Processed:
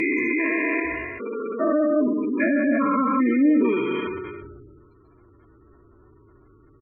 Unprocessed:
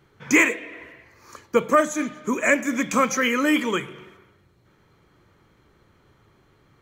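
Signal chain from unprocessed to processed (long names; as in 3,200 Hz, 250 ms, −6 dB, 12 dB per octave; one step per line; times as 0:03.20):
spectrum averaged block by block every 400 ms
feedback echo with a low-pass in the loop 61 ms, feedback 45%, low-pass 4,300 Hz, level −14.5 dB
gate on every frequency bin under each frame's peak −15 dB strong
comb filter 2.9 ms, depth 79%
treble cut that deepens with the level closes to 780 Hz, closed at −20 dBFS
level that may fall only so fast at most 31 dB per second
level +5.5 dB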